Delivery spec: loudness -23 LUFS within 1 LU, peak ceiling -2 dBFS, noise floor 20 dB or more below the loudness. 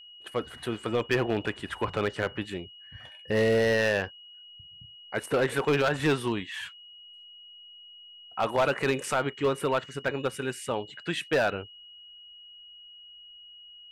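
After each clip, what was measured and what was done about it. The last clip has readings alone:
clipped samples 0.9%; clipping level -18.0 dBFS; steady tone 2.9 kHz; tone level -47 dBFS; loudness -28.5 LUFS; peak level -18.0 dBFS; loudness target -23.0 LUFS
-> clip repair -18 dBFS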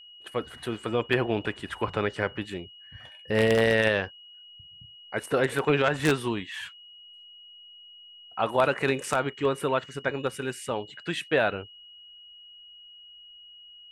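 clipped samples 0.0%; steady tone 2.9 kHz; tone level -47 dBFS
-> band-stop 2.9 kHz, Q 30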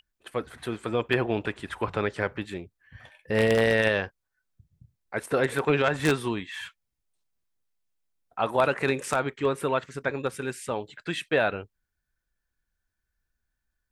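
steady tone not found; loudness -27.5 LUFS; peak level -8.5 dBFS; loudness target -23.0 LUFS
-> trim +4.5 dB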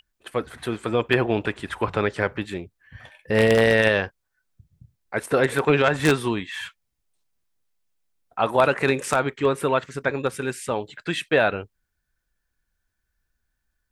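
loudness -23.0 LUFS; peak level -4.0 dBFS; noise floor -78 dBFS

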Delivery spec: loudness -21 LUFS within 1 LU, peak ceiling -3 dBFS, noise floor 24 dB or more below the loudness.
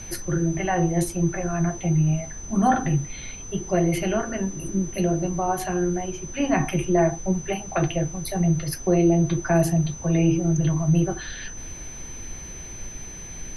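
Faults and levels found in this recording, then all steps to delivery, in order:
steady tone 6.1 kHz; tone level -38 dBFS; noise floor -38 dBFS; noise floor target -48 dBFS; loudness -23.5 LUFS; peak level -8.5 dBFS; loudness target -21.0 LUFS
-> band-stop 6.1 kHz, Q 30; noise print and reduce 10 dB; trim +2.5 dB

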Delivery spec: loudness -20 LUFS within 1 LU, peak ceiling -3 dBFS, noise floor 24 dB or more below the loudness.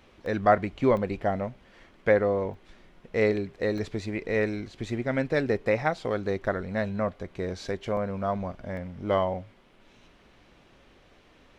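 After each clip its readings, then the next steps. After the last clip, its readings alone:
dropouts 6; longest dropout 1.9 ms; loudness -28.5 LUFS; peak level -6.5 dBFS; loudness target -20.0 LUFS
-> interpolate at 0.26/0.97/2.54/3.78/7.97/8.77 s, 1.9 ms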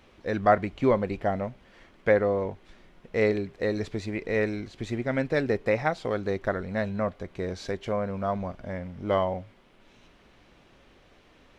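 dropouts 0; loudness -28.5 LUFS; peak level -6.5 dBFS; loudness target -20.0 LUFS
-> trim +8.5 dB; peak limiter -3 dBFS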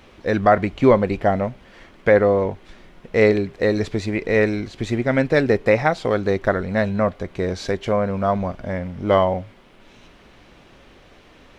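loudness -20.5 LUFS; peak level -3.0 dBFS; noise floor -50 dBFS

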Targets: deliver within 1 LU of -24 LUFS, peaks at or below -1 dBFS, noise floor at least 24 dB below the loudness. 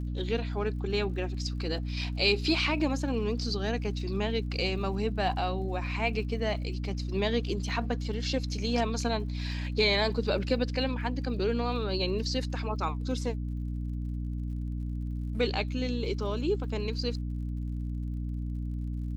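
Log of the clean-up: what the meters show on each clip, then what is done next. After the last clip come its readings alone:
tick rate 57 per s; hum 60 Hz; highest harmonic 300 Hz; hum level -31 dBFS; loudness -31.0 LUFS; peak level -13.5 dBFS; loudness target -24.0 LUFS
-> de-click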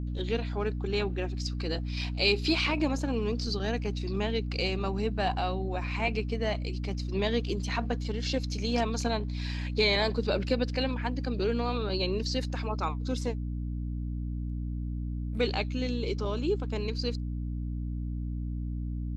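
tick rate 0.16 per s; hum 60 Hz; highest harmonic 300 Hz; hum level -31 dBFS
-> de-hum 60 Hz, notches 5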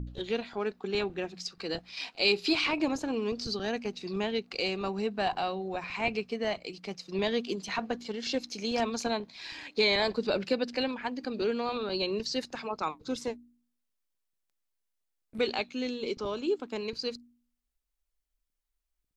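hum not found; loudness -32.0 LUFS; peak level -14.0 dBFS; loudness target -24.0 LUFS
-> trim +8 dB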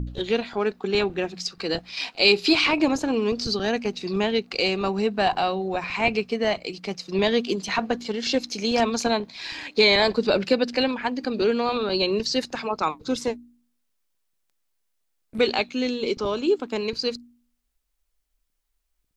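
loudness -24.0 LUFS; peak level -6.0 dBFS; noise floor -74 dBFS

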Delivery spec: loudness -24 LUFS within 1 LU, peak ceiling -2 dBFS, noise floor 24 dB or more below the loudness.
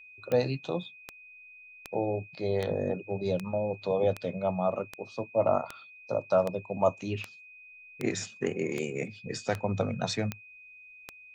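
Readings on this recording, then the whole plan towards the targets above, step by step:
clicks found 15; steady tone 2.5 kHz; tone level -49 dBFS; loudness -31.0 LUFS; peak level -12.5 dBFS; loudness target -24.0 LUFS
-> de-click; band-stop 2.5 kHz, Q 30; trim +7 dB

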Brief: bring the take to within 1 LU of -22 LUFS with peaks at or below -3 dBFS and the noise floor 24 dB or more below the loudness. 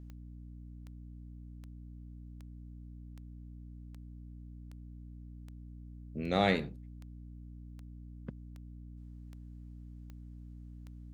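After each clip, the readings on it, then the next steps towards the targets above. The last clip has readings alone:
clicks found 15; hum 60 Hz; highest harmonic 300 Hz; hum level -46 dBFS; loudness -42.5 LUFS; peak level -13.0 dBFS; loudness target -22.0 LUFS
-> de-click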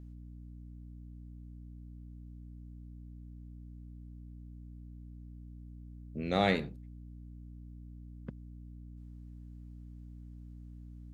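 clicks found 0; hum 60 Hz; highest harmonic 300 Hz; hum level -46 dBFS
-> de-hum 60 Hz, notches 5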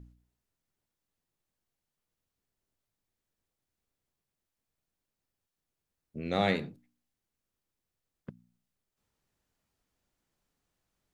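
hum not found; loudness -31.5 LUFS; peak level -13.0 dBFS; loudness target -22.0 LUFS
-> trim +9.5 dB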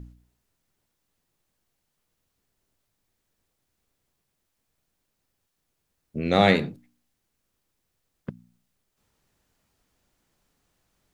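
loudness -22.0 LUFS; peak level -3.5 dBFS; noise floor -78 dBFS

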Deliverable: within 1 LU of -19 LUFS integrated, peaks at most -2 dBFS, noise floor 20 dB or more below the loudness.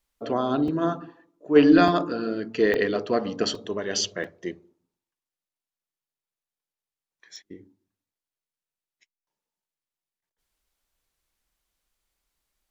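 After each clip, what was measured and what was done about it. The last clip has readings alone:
dropouts 6; longest dropout 3.2 ms; loudness -23.5 LUFS; peak level -4.5 dBFS; loudness target -19.0 LUFS
-> interpolate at 0.68/1.88/2.74/3.55/4.24/7.36 s, 3.2 ms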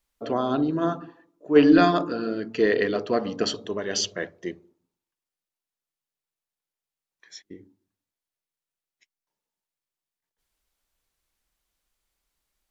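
dropouts 0; loudness -23.5 LUFS; peak level -4.5 dBFS; loudness target -19.0 LUFS
-> trim +4.5 dB; peak limiter -2 dBFS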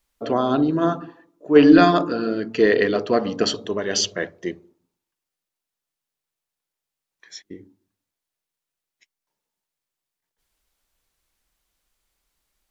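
loudness -19.0 LUFS; peak level -2.0 dBFS; noise floor -86 dBFS

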